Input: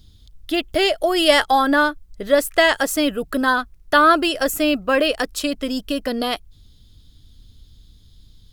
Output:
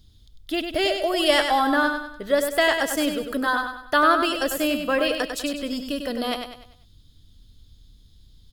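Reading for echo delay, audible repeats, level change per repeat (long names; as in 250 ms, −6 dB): 98 ms, 4, −7.5 dB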